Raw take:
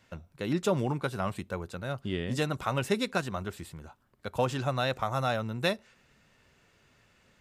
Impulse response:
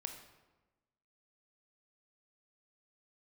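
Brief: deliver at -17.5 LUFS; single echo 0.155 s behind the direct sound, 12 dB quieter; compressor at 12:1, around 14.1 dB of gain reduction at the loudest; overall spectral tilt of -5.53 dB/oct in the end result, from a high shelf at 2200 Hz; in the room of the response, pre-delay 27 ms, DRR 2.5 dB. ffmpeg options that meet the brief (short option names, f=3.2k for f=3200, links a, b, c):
-filter_complex "[0:a]highshelf=f=2.2k:g=-4.5,acompressor=threshold=-37dB:ratio=12,aecho=1:1:155:0.251,asplit=2[a][b];[1:a]atrim=start_sample=2205,adelay=27[c];[b][c]afir=irnorm=-1:irlink=0,volume=0dB[d];[a][d]amix=inputs=2:normalize=0,volume=23.5dB"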